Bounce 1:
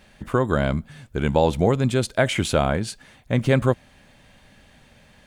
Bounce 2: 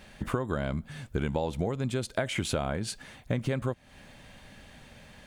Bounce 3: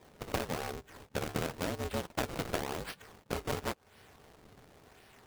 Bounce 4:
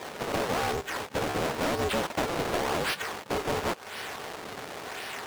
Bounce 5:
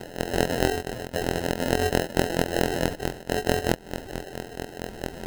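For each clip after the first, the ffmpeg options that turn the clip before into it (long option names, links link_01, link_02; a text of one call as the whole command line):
ffmpeg -i in.wav -af "acompressor=threshold=-27dB:ratio=12,volume=1.5dB" out.wav
ffmpeg -i in.wav -af "lowshelf=frequency=220:width_type=q:width=3:gain=-8,acrusher=samples=30:mix=1:aa=0.000001:lfo=1:lforange=48:lforate=0.94,aeval=exprs='val(0)*sgn(sin(2*PI*170*n/s))':channel_layout=same,volume=-6dB" out.wav
ffmpeg -i in.wav -filter_complex "[0:a]asplit=2[link_01][link_02];[link_02]highpass=frequency=720:poles=1,volume=31dB,asoftclip=type=tanh:threshold=-20.5dB[link_03];[link_01][link_03]amix=inputs=2:normalize=0,lowpass=frequency=7600:poles=1,volume=-6dB" out.wav
ffmpeg -i in.wav -af "afftfilt=real='hypot(re,im)*cos(PI*b)':imag='0':win_size=2048:overlap=0.75,acrusher=samples=38:mix=1:aa=0.000001,volume=7.5dB" out.wav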